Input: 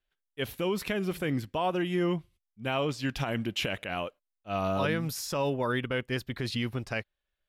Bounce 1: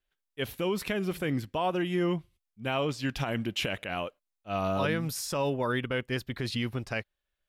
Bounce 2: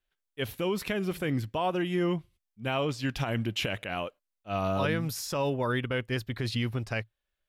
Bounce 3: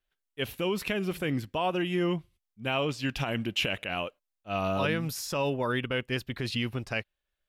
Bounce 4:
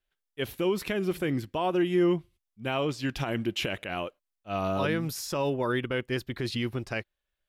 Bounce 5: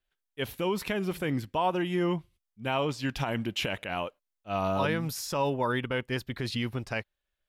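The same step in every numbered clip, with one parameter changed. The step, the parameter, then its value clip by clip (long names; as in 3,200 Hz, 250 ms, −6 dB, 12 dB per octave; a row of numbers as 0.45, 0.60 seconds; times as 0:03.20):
dynamic equaliser, frequency: 8,700, 110, 2,700, 350, 910 Hertz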